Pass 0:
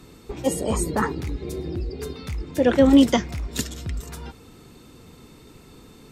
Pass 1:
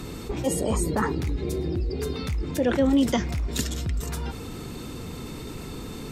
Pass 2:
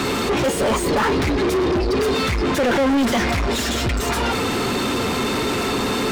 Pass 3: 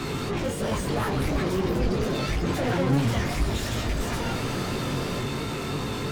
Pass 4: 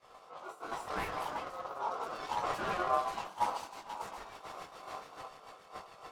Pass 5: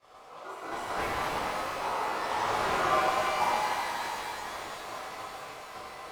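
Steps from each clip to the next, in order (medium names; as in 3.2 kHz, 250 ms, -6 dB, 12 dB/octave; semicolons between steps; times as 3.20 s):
bass shelf 190 Hz +3 dB; level flattener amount 50%; trim -8.5 dB
comb of notches 160 Hz; overdrive pedal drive 38 dB, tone 2.4 kHz, clips at -11.5 dBFS
octave divider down 1 oct, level +4 dB; chorus 2.9 Hz, delay 17.5 ms, depth 4.5 ms; ever faster or slower copies 628 ms, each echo +5 st, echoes 2, each echo -6 dB; trim -7.5 dB
rotary cabinet horn 0.7 Hz, later 7 Hz, at 2.78 s; expander -19 dBFS; ring modulator 900 Hz
pitch-shifted reverb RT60 2.9 s, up +12 st, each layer -8 dB, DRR -5.5 dB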